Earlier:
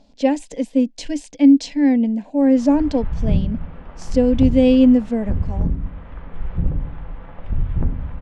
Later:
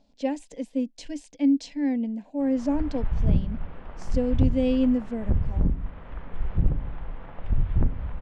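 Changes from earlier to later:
speech -10.0 dB; background: send -9.5 dB

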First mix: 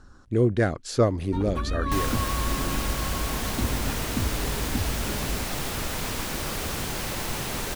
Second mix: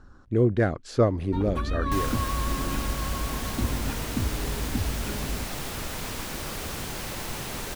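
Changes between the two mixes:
speech: add high shelf 4100 Hz -11.5 dB; second sound -3.5 dB

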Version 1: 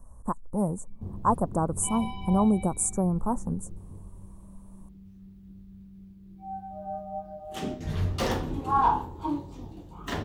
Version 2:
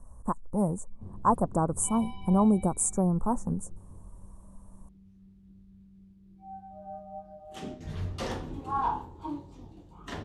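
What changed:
background -6.5 dB; master: add LPF 11000 Hz 24 dB/oct

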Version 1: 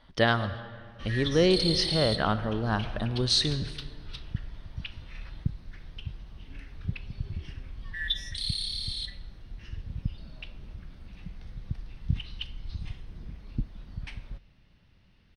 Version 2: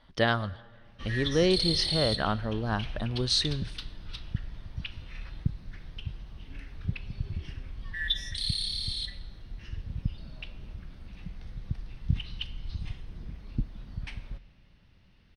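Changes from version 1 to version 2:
speech: send -11.0 dB; background: send +7.5 dB

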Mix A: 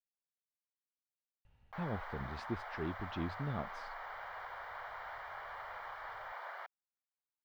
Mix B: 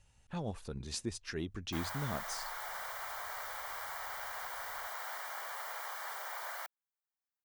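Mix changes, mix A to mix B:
speech: entry -1.45 s; master: remove air absorption 380 m

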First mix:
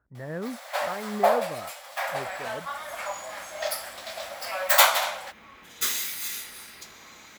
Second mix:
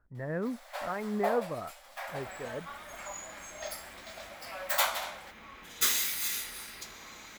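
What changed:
first sound -10.5 dB; master: remove HPF 61 Hz

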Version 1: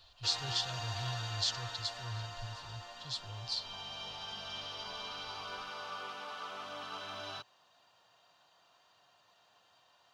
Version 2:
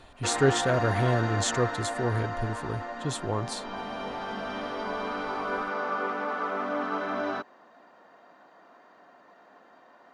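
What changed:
speech: remove ladder low-pass 5100 Hz, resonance 70%; master: remove EQ curve 120 Hz 0 dB, 240 Hz -25 dB, 950 Hz -12 dB, 2000 Hz -14 dB, 2900 Hz +4 dB

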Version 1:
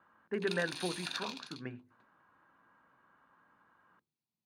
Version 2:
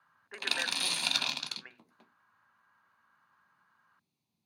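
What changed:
speech: add HPF 990 Hz 12 dB/oct; background +11.5 dB

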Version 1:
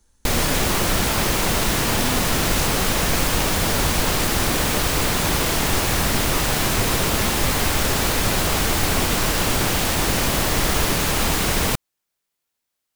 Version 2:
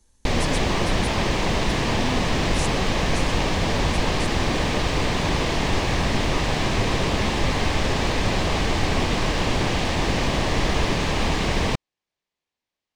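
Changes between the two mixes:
background: add air absorption 130 m; master: add bell 1400 Hz -9 dB 0.24 oct

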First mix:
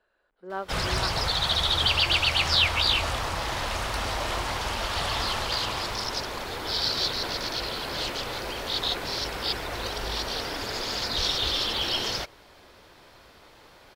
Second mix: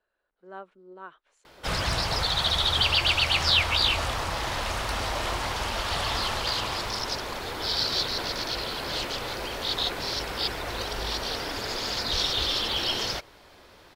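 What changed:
speech -8.0 dB; background: entry +0.95 s

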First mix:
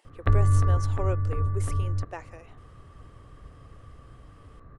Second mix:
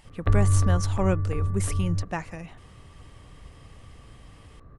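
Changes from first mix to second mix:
speech: remove ladder high-pass 350 Hz, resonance 45%; background: add bell 1500 Hz -3.5 dB 1.1 oct

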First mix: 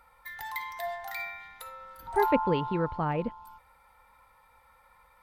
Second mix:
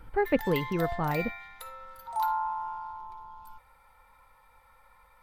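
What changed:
speech: entry -2.00 s; master: remove HPF 45 Hz 6 dB/oct

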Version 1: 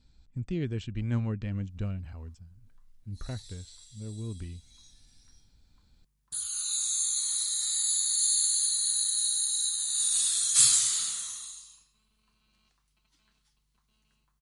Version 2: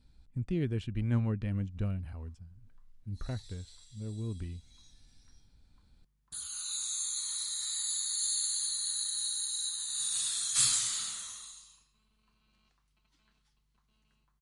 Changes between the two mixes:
speech: remove brick-wall FIR low-pass 8200 Hz; master: add high shelf 4500 Hz -8.5 dB

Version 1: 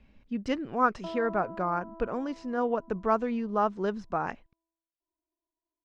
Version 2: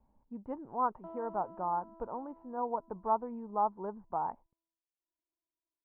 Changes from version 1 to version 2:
speech: add ladder low-pass 980 Hz, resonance 75%; background -8.5 dB

